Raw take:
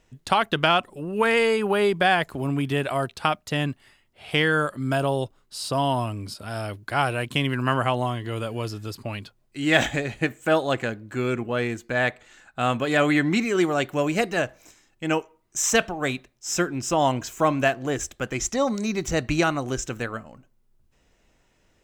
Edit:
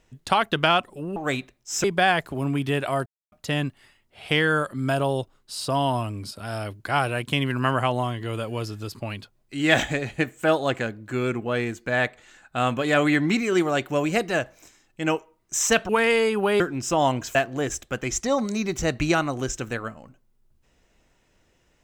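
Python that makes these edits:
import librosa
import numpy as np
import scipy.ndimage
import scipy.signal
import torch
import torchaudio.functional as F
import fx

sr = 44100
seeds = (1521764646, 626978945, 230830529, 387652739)

y = fx.edit(x, sr, fx.swap(start_s=1.16, length_s=0.71, other_s=15.92, other_length_s=0.68),
    fx.silence(start_s=3.09, length_s=0.26),
    fx.cut(start_s=17.35, length_s=0.29), tone=tone)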